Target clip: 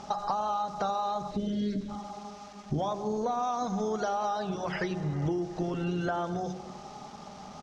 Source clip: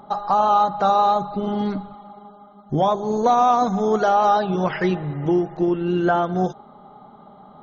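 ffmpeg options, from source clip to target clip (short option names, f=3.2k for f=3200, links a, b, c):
-filter_complex "[0:a]asplit=3[a][b][c];[a]afade=t=out:st=1.3:d=0.02[d];[b]asuperstop=centerf=980:order=12:qfactor=0.98,afade=t=in:st=1.3:d=0.02,afade=t=out:st=1.88:d=0.02[e];[c]afade=t=in:st=1.88:d=0.02[f];[d][e][f]amix=inputs=3:normalize=0,asettb=1/sr,asplit=3[g][h][i];[g]atrim=end=2.934[j];[h]atrim=start=2.93:end=3.43,asetpts=PTS-STARTPTS,afade=t=in:d=0.004:c=qsin,afade=t=out:st=0.496:d=0.004:c=qsin,highshelf=f=4.4k:g=-10.5[k];[i]atrim=start=3.426[l];[j][k]acrossfade=d=0.004:c1=hsin:c2=qsin[m];[m][l]acrossfade=d=0.004:c1=qsin:c2=hsin,asettb=1/sr,asplit=3[n][o][p];[n]atrim=end=5.604[q];[o]atrim=start=5.6:end=6.09,asetpts=PTS-STARTPTS,afade=t=in:d=0.004:c=qsin,afade=t=out:st=0.486:d=0.004:c=qsin,aecho=1:1:7.3:0.63,atrim=end_sample=21609[r];[p]atrim=start=6.086[s];[q][r]acrossfade=d=0.004:c1=hsin:c2=qsin[t];[t][s]acrossfade=d=0.004:c1=qsin:c2=hsin,asplit=2[u][v];[v]adelay=96,lowpass=f=930:p=1,volume=-14.5dB,asplit=2[w][x];[x]adelay=96,lowpass=f=930:p=1,volume=0.5,asplit=2[y][z];[z]adelay=96,lowpass=f=930:p=1,volume=0.5,asplit=2[aa][ab];[ab]adelay=96,lowpass=f=930:p=1,volume=0.5,asplit=2[ac][ad];[ad]adelay=96,lowpass=f=930:p=1,volume=0.5[ae];[u][w][y][aa][ac][ae]amix=inputs=6:normalize=0,acompressor=threshold=-28dB:ratio=10,aeval=exprs='val(0)*gte(abs(val(0)),0.00316)':c=same,lowpass=f=5.9k:t=q:w=3.2,equalizer=f=67:w=1.2:g=10,bandreject=f=45.63:t=h:w=4,bandreject=f=91.26:t=h:w=4,bandreject=f=136.89:t=h:w=4,bandreject=f=182.52:t=h:w=4,bandreject=f=228.15:t=h:w=4,bandreject=f=273.78:t=h:w=4,bandreject=f=319.41:t=h:w=4,bandreject=f=365.04:t=h:w=4,bandreject=f=410.67:t=h:w=4,bandreject=f=456.3:t=h:w=4"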